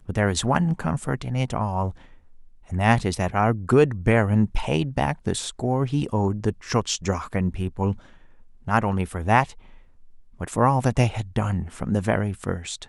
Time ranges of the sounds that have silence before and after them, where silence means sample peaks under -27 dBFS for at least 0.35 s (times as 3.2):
2.72–7.93
8.68–9.44